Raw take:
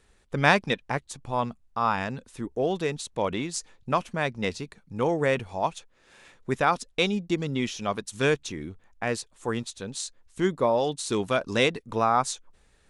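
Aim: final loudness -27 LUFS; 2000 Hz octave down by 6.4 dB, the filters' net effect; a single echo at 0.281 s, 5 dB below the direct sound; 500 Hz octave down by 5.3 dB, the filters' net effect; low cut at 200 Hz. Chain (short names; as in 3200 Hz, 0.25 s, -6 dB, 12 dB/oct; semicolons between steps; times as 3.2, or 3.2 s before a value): HPF 200 Hz; bell 500 Hz -6 dB; bell 2000 Hz -8 dB; echo 0.281 s -5 dB; gain +4 dB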